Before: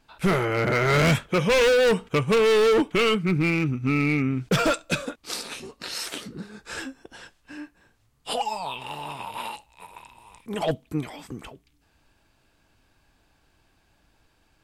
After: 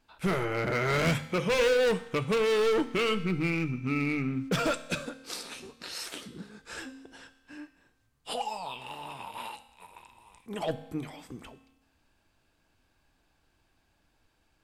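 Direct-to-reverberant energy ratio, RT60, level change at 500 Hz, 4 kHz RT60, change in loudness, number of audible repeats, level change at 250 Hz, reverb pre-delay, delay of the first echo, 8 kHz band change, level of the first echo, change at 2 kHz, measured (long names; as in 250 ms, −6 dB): 11.5 dB, 1.0 s, −6.0 dB, 0.95 s, −6.0 dB, no echo audible, −6.0 dB, 4 ms, no echo audible, −6.0 dB, no echo audible, −6.0 dB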